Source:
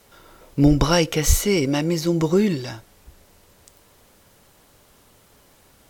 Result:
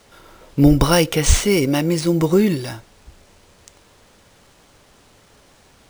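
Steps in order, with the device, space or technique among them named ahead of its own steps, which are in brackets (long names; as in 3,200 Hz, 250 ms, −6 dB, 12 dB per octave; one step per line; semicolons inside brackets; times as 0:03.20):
crushed at another speed (tape speed factor 0.5×; decimation without filtering 6×; tape speed factor 2×)
level +3 dB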